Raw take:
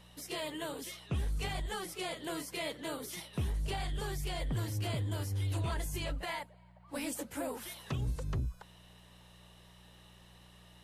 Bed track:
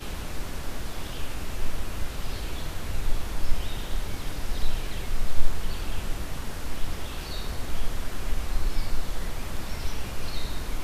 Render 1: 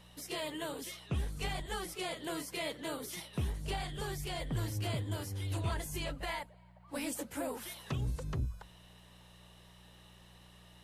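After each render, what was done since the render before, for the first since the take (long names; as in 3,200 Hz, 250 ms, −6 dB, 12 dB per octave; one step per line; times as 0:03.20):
hum removal 50 Hz, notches 2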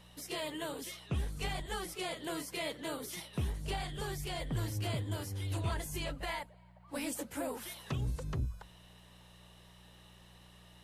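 no processing that can be heard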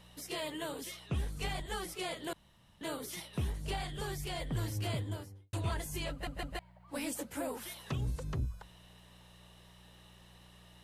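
0:02.33–0:02.81: fill with room tone
0:04.97–0:05.53: fade out and dull
0:06.11: stutter in place 0.16 s, 3 plays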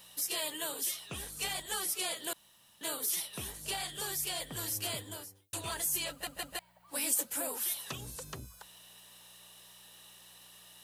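RIAA equalisation recording
notch filter 2,100 Hz, Q 16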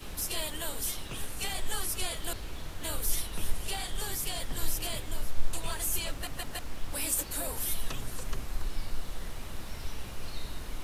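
mix in bed track −7.5 dB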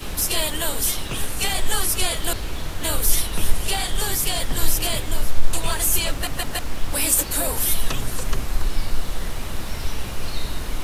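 level +11.5 dB
brickwall limiter −3 dBFS, peak gain reduction 3 dB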